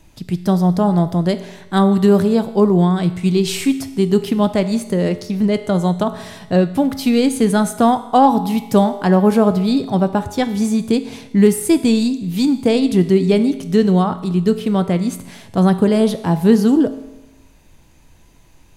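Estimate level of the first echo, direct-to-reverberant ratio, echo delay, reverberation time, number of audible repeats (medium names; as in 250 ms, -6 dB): no echo, 10.0 dB, no echo, 1.0 s, no echo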